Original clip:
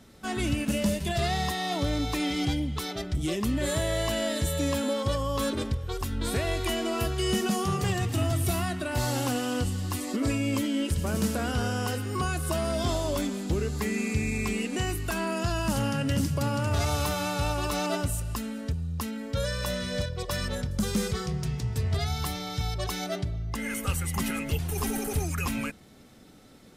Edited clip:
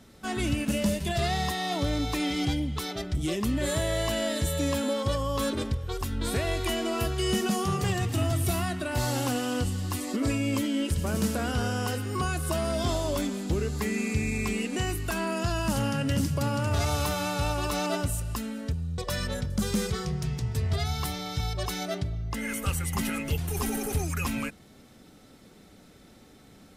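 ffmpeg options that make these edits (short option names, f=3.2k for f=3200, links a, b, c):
-filter_complex "[0:a]asplit=2[a][b];[a]atrim=end=18.982[c];[b]atrim=start=20.188[d];[c][d]acrossfade=d=0.004:c1=hsin:c2=hsin"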